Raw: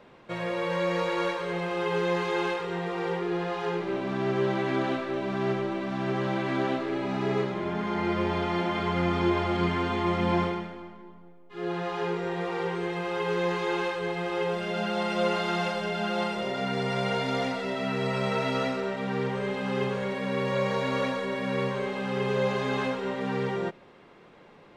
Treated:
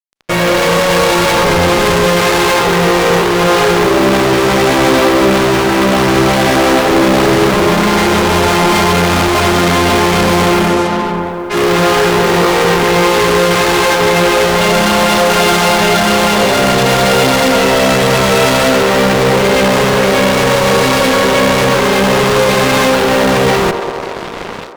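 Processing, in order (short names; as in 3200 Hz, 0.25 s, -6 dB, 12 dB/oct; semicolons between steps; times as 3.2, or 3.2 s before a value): 1.16–2.13 octaver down 1 oct, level -1 dB; AGC gain up to 9.5 dB; fuzz box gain 39 dB, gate -42 dBFS; on a send: band-limited delay 94 ms, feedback 82%, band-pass 640 Hz, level -9 dB; on the sum: Schroeder reverb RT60 1.5 s, combs from 28 ms, DRR 18.5 dB; gain +3 dB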